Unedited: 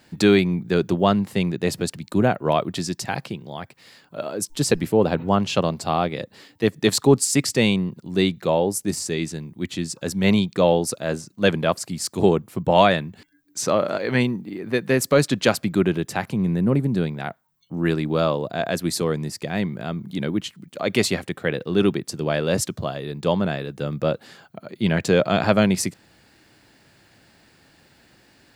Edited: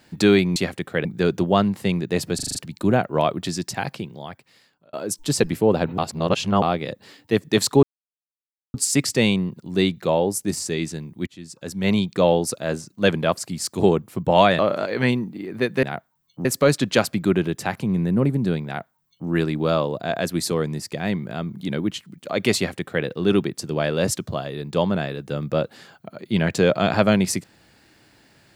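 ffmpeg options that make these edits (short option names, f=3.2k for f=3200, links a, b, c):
-filter_complex "[0:a]asplit=16[a][b][c][d][e][f][g][h][i][j][k][l][m][n][o][p];[a]atrim=end=0.562[q];[b]atrim=start=21.058:end=21.552[r];[c]atrim=start=0.558:end=1.902[s];[d]atrim=start=1.858:end=1.902[t];[e]atrim=start=1.858:end=1.902[u];[f]atrim=start=1.858:end=1.902[v];[g]atrim=start=1.858:end=1.902[w];[h]atrim=start=1.858:end=4.24,asetpts=PTS-STARTPTS,afade=t=out:st=1.532:d=0.85[x];[i]atrim=start=4.24:end=5.292,asetpts=PTS-STARTPTS,afade=t=in:d=0.004:c=hsin[y];[j]atrim=start=5.288:end=5.932,asetpts=PTS-STARTPTS,areverse[z];[k]atrim=start=5.928:end=7.14,asetpts=PTS-STARTPTS,afade=t=out:st=1.208:d=0.004:c=hsin,apad=pad_dur=0.91[aa];[l]atrim=start=7.14:end=9.67,asetpts=PTS-STARTPTS,afade=t=in:d=0.004:c=hsin,afade=t=out:st=2.526:d=0.004:c=hsin:silence=0.0944061[ab];[m]atrim=start=9.67:end=12.992,asetpts=PTS-STARTPTS,afade=t=in:d=0.85:silence=0.0944061[ac];[n]atrim=start=13.708:end=14.952[ad];[o]atrim=start=17.158:end=17.782[ae];[p]atrim=start=14.948[af];[q][r]acrossfade=d=0.004:c1=hsin:c2=hsin[ag];[ag][s]acrossfade=d=0.004:c1=hsin:c2=hsin[ah];[ah][t]acrossfade=d=0.004:c1=hsin:c2=hsin[ai];[ai][u]acrossfade=d=0.004:c1=hsin:c2=hsin[aj];[aj][v]acrossfade=d=0.004:c1=hsin:c2=hsin[ak];[ak][w]acrossfade=d=0.004:c1=hsin:c2=hsin[al];[x][y]concat=n=2:v=0:a=1[am];[al][am]acrossfade=d=0.004:c1=hsin:c2=hsin[an];[an][z]acrossfade=d=0.004:c1=hsin:c2=hsin[ao];[aa][ab][ac]concat=n=3:v=0:a=1[ap];[ao][ap]acrossfade=d=0.004:c1=hsin:c2=hsin[aq];[aq][ad]acrossfade=d=0.004:c1=hsin:c2=hsin[ar];[ar][ae]acrossfade=d=0.004:c1=hsin:c2=hsin[as];[as][af]acrossfade=d=0.004:c1=hsin:c2=hsin"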